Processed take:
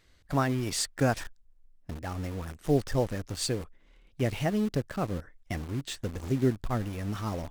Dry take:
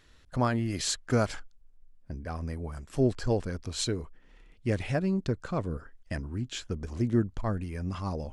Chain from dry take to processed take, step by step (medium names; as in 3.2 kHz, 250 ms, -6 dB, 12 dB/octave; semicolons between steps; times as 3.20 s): in parallel at -5.5 dB: bit crusher 6-bit; on the sum: tape speed +11%; trim -3.5 dB